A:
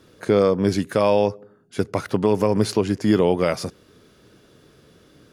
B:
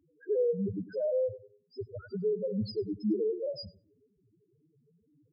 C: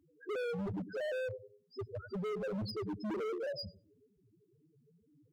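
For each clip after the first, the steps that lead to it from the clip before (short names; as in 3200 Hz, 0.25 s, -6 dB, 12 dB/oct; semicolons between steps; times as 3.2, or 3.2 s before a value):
bell 5000 Hz +13 dB 0.38 oct; loudest bins only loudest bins 1; darkening echo 99 ms, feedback 22%, low-pass 2000 Hz, level -15.5 dB; gain -4 dB
hard clip -35.5 dBFS, distortion -6 dB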